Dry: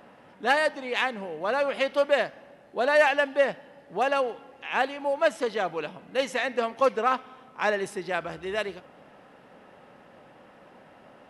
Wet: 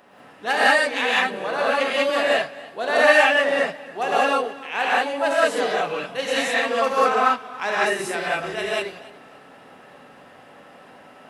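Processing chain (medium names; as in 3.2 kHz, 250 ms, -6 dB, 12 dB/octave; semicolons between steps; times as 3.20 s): tilt EQ +1.5 dB/octave; gated-style reverb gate 220 ms rising, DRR -7 dB; modulated delay 279 ms, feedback 32%, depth 54 cents, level -20 dB; trim -1.5 dB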